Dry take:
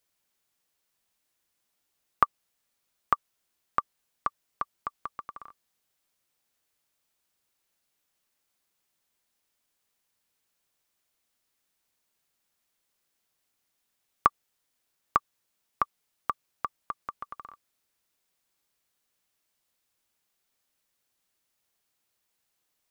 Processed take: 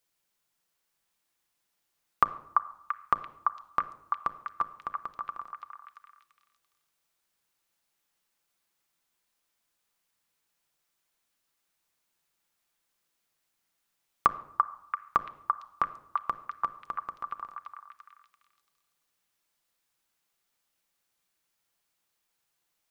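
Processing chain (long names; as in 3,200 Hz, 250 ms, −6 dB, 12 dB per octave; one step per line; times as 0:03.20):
hum removal 58.36 Hz, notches 11
on a send: echo through a band-pass that steps 339 ms, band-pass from 1,100 Hz, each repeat 0.7 octaves, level −2 dB
on the sum: rectangular room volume 2,500 cubic metres, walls furnished, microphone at 0.77 metres
level −1.5 dB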